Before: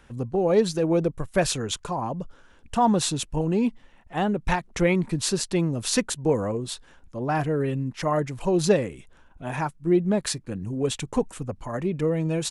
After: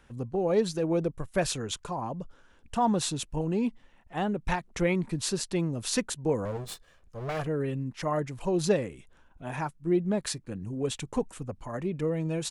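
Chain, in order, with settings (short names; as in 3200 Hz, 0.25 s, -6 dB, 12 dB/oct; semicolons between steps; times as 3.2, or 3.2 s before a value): 6.45–7.47 minimum comb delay 1.7 ms; gain -5 dB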